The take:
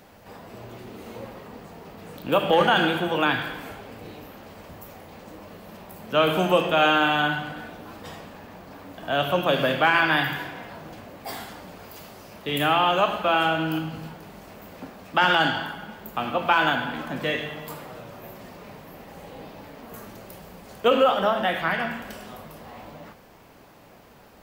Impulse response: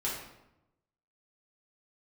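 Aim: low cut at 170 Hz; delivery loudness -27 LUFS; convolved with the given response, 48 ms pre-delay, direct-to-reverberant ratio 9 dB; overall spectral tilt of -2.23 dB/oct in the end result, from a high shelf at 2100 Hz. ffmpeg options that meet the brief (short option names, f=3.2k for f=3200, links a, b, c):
-filter_complex "[0:a]highpass=170,highshelf=f=2.1k:g=-5,asplit=2[a][b];[1:a]atrim=start_sample=2205,adelay=48[c];[b][c]afir=irnorm=-1:irlink=0,volume=-14dB[d];[a][d]amix=inputs=2:normalize=0,volume=-3.5dB"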